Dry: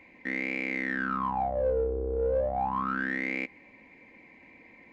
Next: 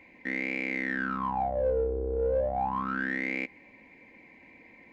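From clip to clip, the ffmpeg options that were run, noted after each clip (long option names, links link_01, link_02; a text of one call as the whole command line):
ffmpeg -i in.wav -af "bandreject=frequency=1200:width=7.5" out.wav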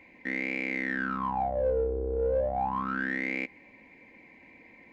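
ffmpeg -i in.wav -af anull out.wav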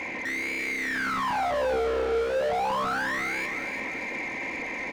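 ffmpeg -i in.wav -filter_complex "[0:a]asplit=2[link_01][link_02];[link_02]highpass=frequency=720:poles=1,volume=39dB,asoftclip=type=tanh:threshold=-18.5dB[link_03];[link_01][link_03]amix=inputs=2:normalize=0,lowpass=frequency=1700:poles=1,volume=-6dB,aecho=1:1:341|682|1023|1364|1705:0.376|0.162|0.0695|0.0299|0.0128,volume=-2.5dB" out.wav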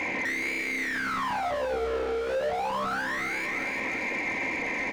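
ffmpeg -i in.wav -af "alimiter=level_in=3dB:limit=-24dB:level=0:latency=1,volume=-3dB,flanger=delay=9.9:depth=9.3:regen=75:speed=0.7:shape=sinusoidal,volume=8dB" out.wav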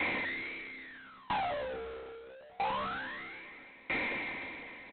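ffmpeg -i in.wav -af "aresample=8000,asoftclip=type=hard:threshold=-31dB,aresample=44100,aeval=exprs='val(0)*pow(10,-26*if(lt(mod(0.77*n/s,1),2*abs(0.77)/1000),1-mod(0.77*n/s,1)/(2*abs(0.77)/1000),(mod(0.77*n/s,1)-2*abs(0.77)/1000)/(1-2*abs(0.77)/1000))/20)':channel_layout=same,volume=2dB" out.wav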